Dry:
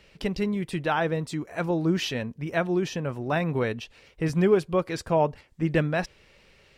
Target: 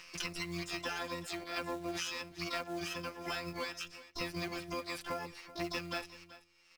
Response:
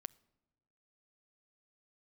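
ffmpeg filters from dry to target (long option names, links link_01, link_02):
-filter_complex "[0:a]agate=range=-32dB:threshold=-50dB:ratio=16:detection=peak,bandreject=frequency=60.15:width_type=h:width=4,bandreject=frequency=120.3:width_type=h:width=4,bandreject=frequency=180.45:width_type=h:width=4,bandreject=frequency=240.6:width_type=h:width=4,bandreject=frequency=300.75:width_type=h:width=4,bandreject=frequency=360.9:width_type=h:width=4,afftfilt=real='hypot(re,im)*cos(PI*b)':imag='0':win_size=1024:overlap=0.75,acrossover=split=520 5900:gain=0.251 1 0.126[link_01][link_02][link_03];[link_01][link_02][link_03]amix=inputs=3:normalize=0,acompressor=mode=upward:threshold=-47dB:ratio=2.5,equalizer=frequency=100:width_type=o:width=0.67:gain=5,equalizer=frequency=1000:width_type=o:width=0.67:gain=-5,equalizer=frequency=2500:width_type=o:width=0.67:gain=9,asoftclip=type=tanh:threshold=-17dB,aphaser=in_gain=1:out_gain=1:delay=4.1:decay=0.24:speed=1.7:type=triangular,acrusher=bits=4:mode=log:mix=0:aa=0.000001,acompressor=threshold=-47dB:ratio=6,asplit=3[link_04][link_05][link_06];[link_05]asetrate=22050,aresample=44100,atempo=2,volume=-9dB[link_07];[link_06]asetrate=88200,aresample=44100,atempo=0.5,volume=-2dB[link_08];[link_04][link_07][link_08]amix=inputs=3:normalize=0,aecho=1:1:381:0.15,volume=7.5dB"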